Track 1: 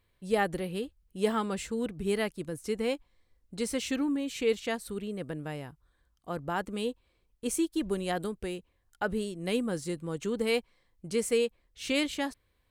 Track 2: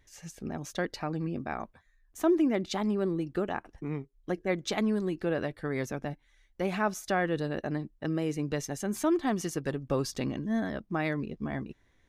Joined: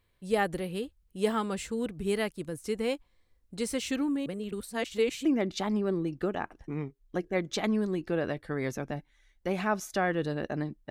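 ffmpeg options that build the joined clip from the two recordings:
ffmpeg -i cue0.wav -i cue1.wav -filter_complex "[0:a]apad=whole_dur=10.9,atrim=end=10.9,asplit=2[link_01][link_02];[link_01]atrim=end=4.262[link_03];[link_02]atrim=start=4.258:end=5.252,asetpts=PTS-STARTPTS,areverse[link_04];[1:a]atrim=start=2.388:end=8.04[link_05];[link_03][link_04]acrossfade=duration=0.004:curve1=hsin:curve2=hsin[link_06];[link_06][link_05]acrossfade=duration=0.004:curve1=hsin:curve2=hsin" out.wav

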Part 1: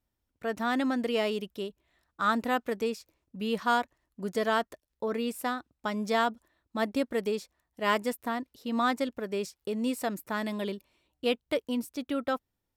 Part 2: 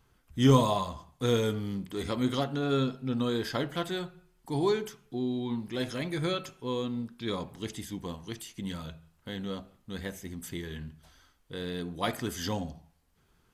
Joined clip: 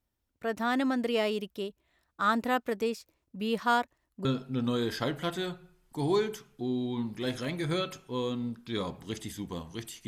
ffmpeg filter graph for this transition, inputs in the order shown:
ffmpeg -i cue0.wav -i cue1.wav -filter_complex "[0:a]apad=whole_dur=10.07,atrim=end=10.07,atrim=end=4.252[link_01];[1:a]atrim=start=2.778:end=8.6[link_02];[link_01][link_02]acrossfade=duration=0.004:curve1=hsin:curve2=hsin" out.wav

